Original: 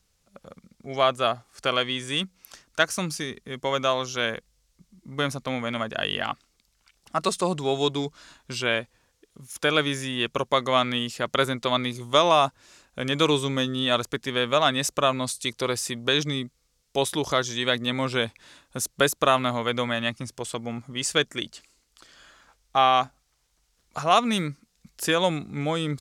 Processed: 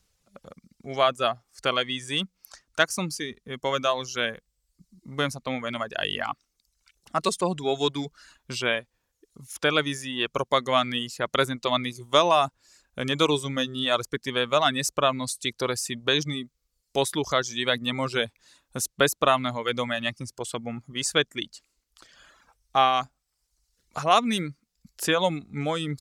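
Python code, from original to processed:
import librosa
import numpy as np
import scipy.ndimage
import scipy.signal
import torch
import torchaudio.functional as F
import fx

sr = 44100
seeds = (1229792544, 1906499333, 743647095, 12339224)

y = fx.dereverb_blind(x, sr, rt60_s=0.92)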